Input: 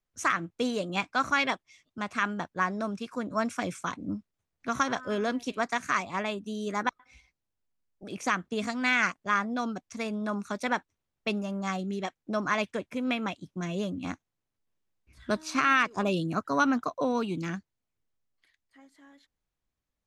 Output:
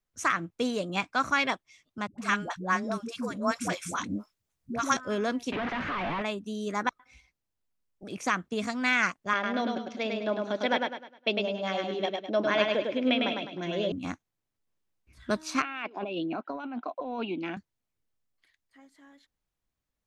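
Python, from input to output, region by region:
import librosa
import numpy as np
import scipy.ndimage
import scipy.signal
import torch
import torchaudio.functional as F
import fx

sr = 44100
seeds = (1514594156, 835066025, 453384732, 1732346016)

y = fx.chain(x, sr, fx.high_shelf(hz=3600.0, db=7.5),
    fx.dispersion(late='highs', ms=111.0, hz=420.0), at=(2.07, 4.97))
y = fx.chain(y, sr, fx.clip_1bit(),
    fx.lowpass(hz=2900.0, slope=24), at=(5.52, 6.22))
y = fx.chain(y, sr, fx.cabinet(low_hz=150.0, low_slope=12, high_hz=4900.0, hz=(190.0, 310.0, 580.0, 1200.0, 3200.0), db=(-7, 7, 9, -8, 9)),
    fx.echo_feedback(ms=103, feedback_pct=37, wet_db=-3.5), at=(9.33, 13.92))
y = fx.chain(y, sr, fx.cabinet(low_hz=260.0, low_slope=24, high_hz=3200.0, hz=(460.0, 760.0, 1200.0, 1800.0, 2600.0), db=(-6, 5, -10, -8, 4)),
    fx.over_compress(threshold_db=-34.0, ratio=-1.0), at=(15.62, 17.57))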